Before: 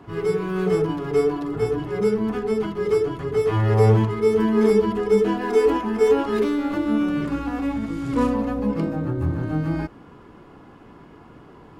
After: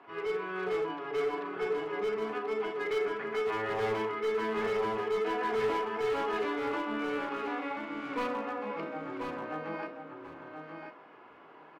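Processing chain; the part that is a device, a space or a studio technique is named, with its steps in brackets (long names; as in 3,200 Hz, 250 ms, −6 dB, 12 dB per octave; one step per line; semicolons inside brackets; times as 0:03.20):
gain on a spectral selection 0:02.80–0:03.40, 1,300–2,600 Hz +6 dB
megaphone (band-pass filter 600–2,800 Hz; parametric band 2,400 Hz +4 dB 0.42 octaves; hard clipping −25 dBFS, distortion −10 dB; double-tracking delay 37 ms −12.5 dB)
repeating echo 1,035 ms, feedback 15%, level −6 dB
level −3.5 dB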